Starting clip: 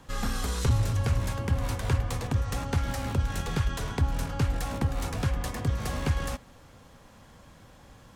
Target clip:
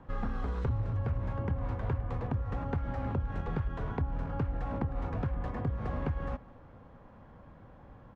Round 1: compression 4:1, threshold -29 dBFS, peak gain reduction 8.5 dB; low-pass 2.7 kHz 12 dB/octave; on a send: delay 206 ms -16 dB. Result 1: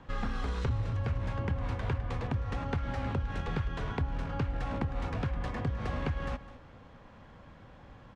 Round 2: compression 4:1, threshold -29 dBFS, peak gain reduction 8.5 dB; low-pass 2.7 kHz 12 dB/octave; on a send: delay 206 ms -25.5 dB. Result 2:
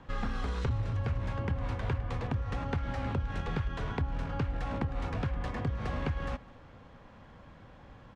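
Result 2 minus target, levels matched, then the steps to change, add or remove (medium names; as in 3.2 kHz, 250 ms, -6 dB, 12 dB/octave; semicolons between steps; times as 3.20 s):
2 kHz band +5.0 dB
change: low-pass 1.3 kHz 12 dB/octave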